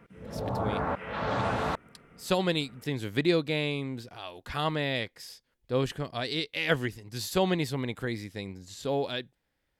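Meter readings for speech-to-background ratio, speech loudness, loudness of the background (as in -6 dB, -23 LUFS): 1.0 dB, -31.0 LUFS, -32.0 LUFS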